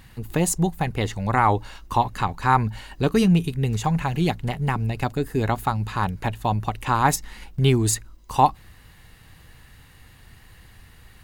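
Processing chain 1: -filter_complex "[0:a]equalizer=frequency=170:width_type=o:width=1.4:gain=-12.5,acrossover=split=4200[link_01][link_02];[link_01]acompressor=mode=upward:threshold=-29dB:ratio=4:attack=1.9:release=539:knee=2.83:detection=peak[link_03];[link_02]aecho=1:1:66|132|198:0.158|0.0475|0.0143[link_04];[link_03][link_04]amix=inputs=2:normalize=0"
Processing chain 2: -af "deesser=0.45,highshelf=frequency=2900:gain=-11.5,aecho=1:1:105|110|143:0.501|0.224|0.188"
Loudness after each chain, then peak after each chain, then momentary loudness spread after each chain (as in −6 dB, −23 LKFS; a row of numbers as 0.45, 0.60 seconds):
−26.0, −23.0 LKFS; −4.5, −5.0 dBFS; 20, 7 LU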